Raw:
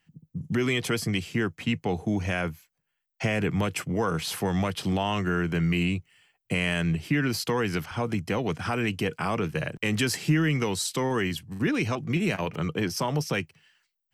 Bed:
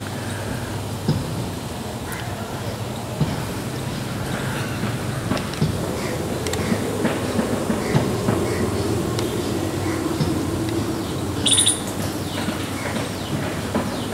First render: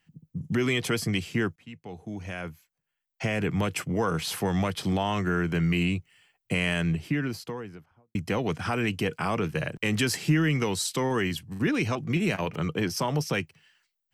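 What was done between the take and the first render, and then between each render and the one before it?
1.56–3.74 fade in, from -22 dB; 4.72–5.48 notch 2800 Hz; 6.68–8.15 studio fade out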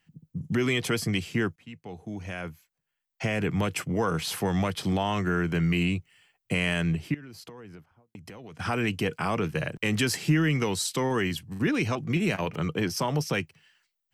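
7.14–8.6 compressor 16:1, threshold -40 dBFS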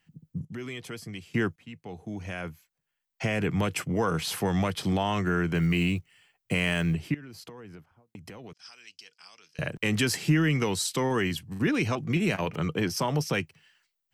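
0.45–1.34 gain -12 dB; 5.57–6.95 block floating point 7-bit; 8.53–9.59 band-pass 5100 Hz, Q 4.7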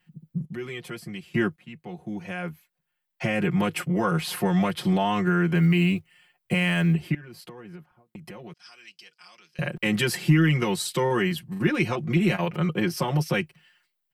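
bell 6300 Hz -7.5 dB 0.82 oct; comb 5.6 ms, depth 97%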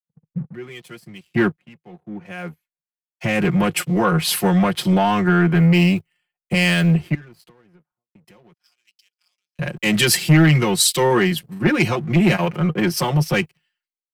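sample leveller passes 2; three-band expander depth 100%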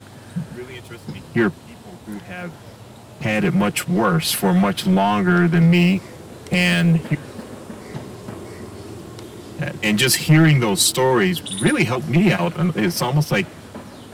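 add bed -13 dB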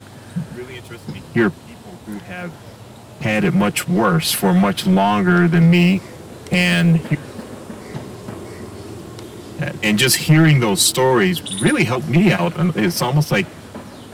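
gain +2 dB; limiter -3 dBFS, peak gain reduction 2.5 dB

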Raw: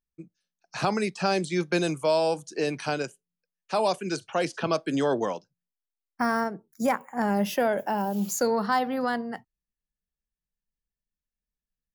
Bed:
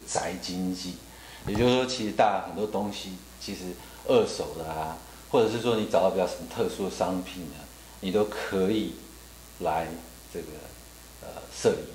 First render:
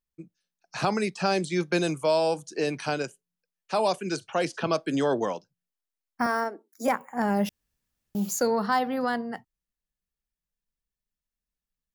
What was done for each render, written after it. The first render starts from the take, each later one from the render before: 6.26–6.88 steep high-pass 250 Hz 48 dB/oct; 7.49–8.15 room tone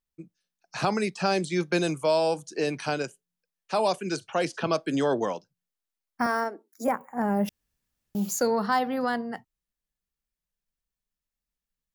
6.84–7.48 bell 4300 Hz -15 dB 1.6 oct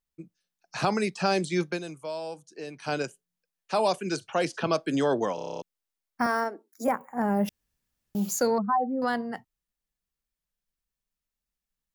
1.65–2.94 dip -11.5 dB, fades 0.14 s; 5.35 stutter in place 0.03 s, 9 plays; 8.58–9.02 spectral contrast raised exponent 2.6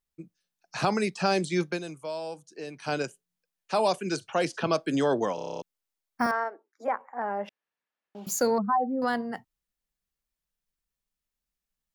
6.31–8.27 BPF 540–2400 Hz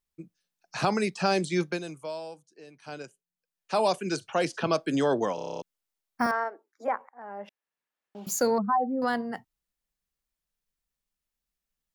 2.03–3.77 dip -10.5 dB, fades 0.45 s; 7.09–8.28 fade in equal-power, from -21.5 dB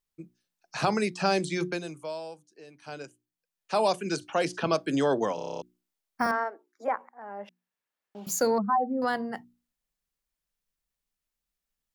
notches 60/120/180/240/300/360 Hz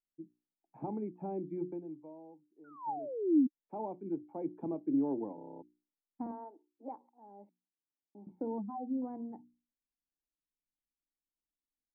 2.64–3.47 painted sound fall 240–1500 Hz -23 dBFS; vocal tract filter u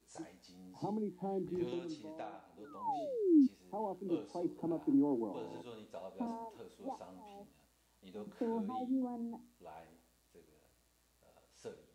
add bed -25.5 dB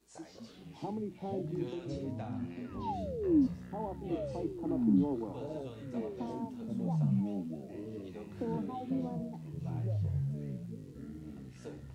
echoes that change speed 0.134 s, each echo -6 st, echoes 3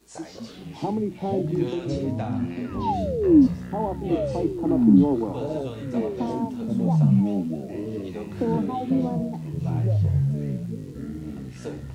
gain +12 dB

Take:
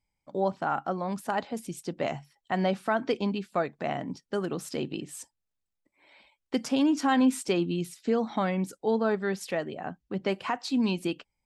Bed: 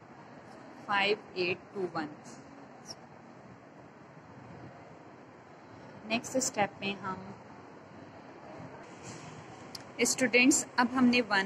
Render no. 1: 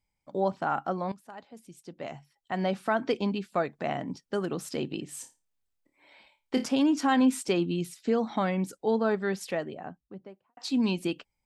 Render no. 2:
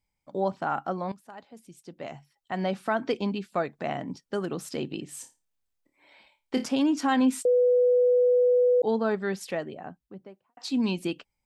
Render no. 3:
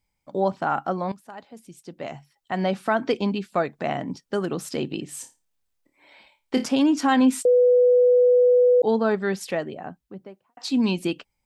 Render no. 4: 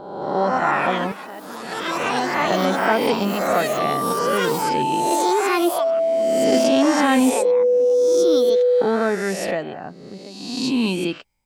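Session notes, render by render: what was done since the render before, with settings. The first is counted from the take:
1.12–2.89 fade in quadratic, from -16.5 dB; 5.09–6.66 flutter echo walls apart 4.7 m, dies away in 0.25 s; 9.37–10.57 studio fade out
7.45–8.82 bleep 494 Hz -17.5 dBFS
gain +4.5 dB
spectral swells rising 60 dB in 1.26 s; echoes that change speed 0.221 s, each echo +5 st, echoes 3

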